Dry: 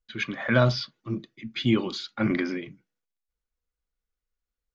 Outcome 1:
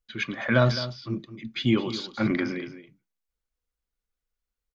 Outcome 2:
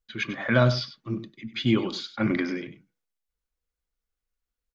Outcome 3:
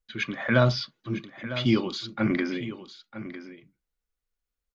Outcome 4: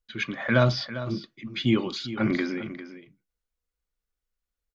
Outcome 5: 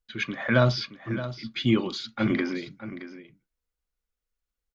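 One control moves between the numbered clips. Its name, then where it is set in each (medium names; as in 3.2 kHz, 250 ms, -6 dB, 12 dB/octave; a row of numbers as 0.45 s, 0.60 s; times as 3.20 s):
delay, time: 211 ms, 97 ms, 953 ms, 400 ms, 622 ms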